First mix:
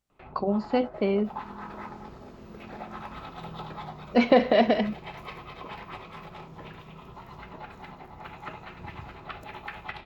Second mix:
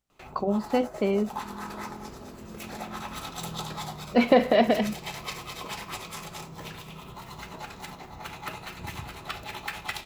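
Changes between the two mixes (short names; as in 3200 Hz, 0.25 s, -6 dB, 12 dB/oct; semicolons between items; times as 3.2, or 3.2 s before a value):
first sound: remove air absorption 420 m; second sound +3.5 dB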